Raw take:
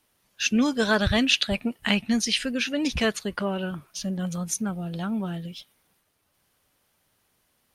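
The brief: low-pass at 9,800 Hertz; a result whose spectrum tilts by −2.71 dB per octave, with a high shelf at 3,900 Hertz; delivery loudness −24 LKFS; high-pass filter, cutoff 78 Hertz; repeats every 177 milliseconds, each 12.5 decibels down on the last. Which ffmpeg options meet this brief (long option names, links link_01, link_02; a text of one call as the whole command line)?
ffmpeg -i in.wav -af "highpass=78,lowpass=9800,highshelf=frequency=3900:gain=8.5,aecho=1:1:177|354|531:0.237|0.0569|0.0137,volume=-0.5dB" out.wav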